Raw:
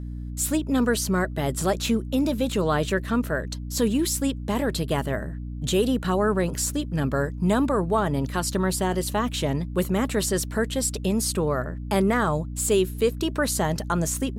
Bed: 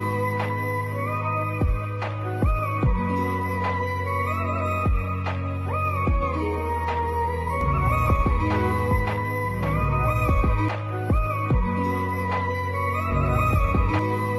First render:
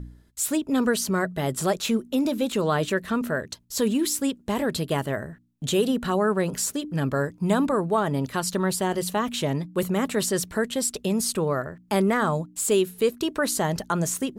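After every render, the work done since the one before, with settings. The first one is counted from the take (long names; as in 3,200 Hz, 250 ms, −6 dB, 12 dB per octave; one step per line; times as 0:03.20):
hum removal 60 Hz, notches 5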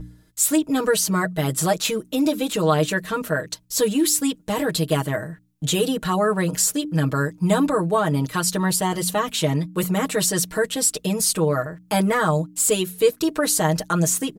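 high-shelf EQ 4,200 Hz +5 dB
comb filter 6.4 ms, depth 99%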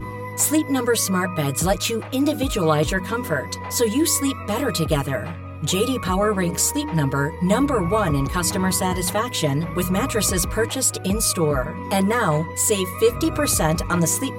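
mix in bed −7 dB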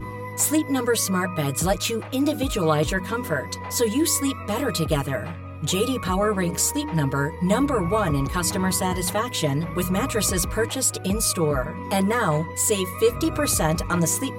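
level −2 dB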